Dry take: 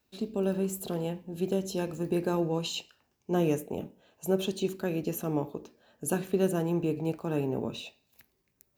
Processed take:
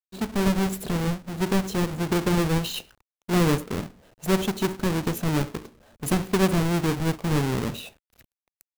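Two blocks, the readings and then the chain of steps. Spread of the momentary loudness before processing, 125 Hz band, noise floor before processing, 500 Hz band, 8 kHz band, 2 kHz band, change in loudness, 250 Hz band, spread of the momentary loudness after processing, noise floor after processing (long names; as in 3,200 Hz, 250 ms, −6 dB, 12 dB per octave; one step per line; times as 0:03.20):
11 LU, +9.0 dB, −75 dBFS, +2.0 dB, +6.5 dB, +12.0 dB, +6.0 dB, +6.0 dB, 12 LU, below −85 dBFS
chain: each half-wave held at its own peak
bit reduction 10 bits
low-shelf EQ 97 Hz +11 dB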